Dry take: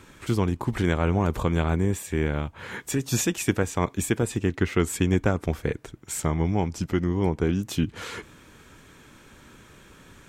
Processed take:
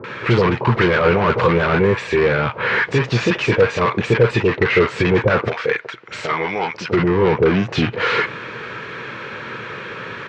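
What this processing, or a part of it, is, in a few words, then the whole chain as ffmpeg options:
overdrive pedal into a guitar cabinet: -filter_complex "[0:a]asettb=1/sr,asplit=3[s0][s1][s2];[s0]atrim=end=5.484[s3];[s1]atrim=start=5.48:end=6.88,asetpts=PTS-STARTPTS,afade=t=in:d=0.004:c=qsin,afade=t=out:st=1.396:d=0.004:c=qsin,highpass=f=1500:p=1[s4];[s2]atrim=start=6.876[s5];[s3][s4]acrossfade=d=0.004:c1=hsin:c2=qsin[s6];[s6][s5]acrossfade=d=0.004:c1=qsin:c2=hsin,asplit=2[s7][s8];[s8]highpass=f=720:p=1,volume=35.5,asoftclip=type=tanh:threshold=0.422[s9];[s7][s9]amix=inputs=2:normalize=0,lowpass=f=2700:p=1,volume=0.501,highpass=100,equalizer=f=120:t=q:w=4:g=9,equalizer=f=280:t=q:w=4:g=-9,equalizer=f=480:t=q:w=4:g=6,equalizer=f=750:t=q:w=4:g=-4,equalizer=f=3400:t=q:w=4:g=-6,lowpass=f=4100:w=0.5412,lowpass=f=4100:w=1.3066,acrossover=split=750[s10][s11];[s11]adelay=40[s12];[s10][s12]amix=inputs=2:normalize=0,volume=1.26"

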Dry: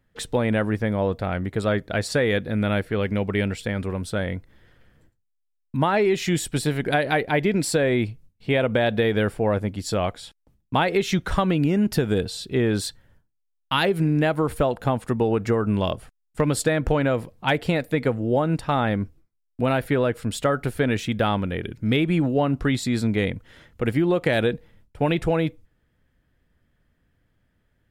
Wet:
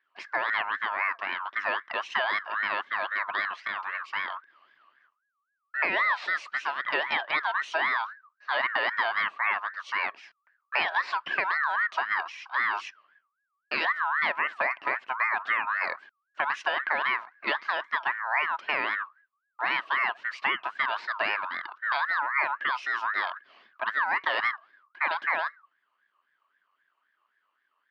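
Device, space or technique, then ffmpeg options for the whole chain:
voice changer toy: -af "aeval=exprs='val(0)*sin(2*PI*1400*n/s+1400*0.2/3.8*sin(2*PI*3.8*n/s))':c=same,highpass=470,equalizer=f=480:t=q:w=4:g=-8,equalizer=f=790:t=q:w=4:g=-5,equalizer=f=1400:t=q:w=4:g=-8,equalizer=f=3500:t=q:w=4:g=-6,lowpass=f=3800:w=0.5412,lowpass=f=3800:w=1.3066"

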